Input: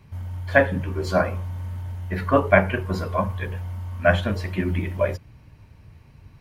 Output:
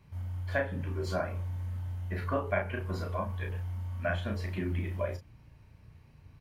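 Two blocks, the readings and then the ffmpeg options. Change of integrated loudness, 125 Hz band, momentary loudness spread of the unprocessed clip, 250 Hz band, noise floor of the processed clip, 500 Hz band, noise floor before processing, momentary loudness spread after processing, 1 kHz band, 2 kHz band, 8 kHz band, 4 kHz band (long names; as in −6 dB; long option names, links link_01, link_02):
−11.0 dB, −7.5 dB, 14 LU, −11.5 dB, −58 dBFS, −12.5 dB, −50 dBFS, 5 LU, −12.5 dB, −13.0 dB, can't be measured, −10.5 dB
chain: -filter_complex "[0:a]acompressor=threshold=-24dB:ratio=2,asplit=2[link_01][link_02];[link_02]adelay=34,volume=-5dB[link_03];[link_01][link_03]amix=inputs=2:normalize=0,volume=-8.5dB"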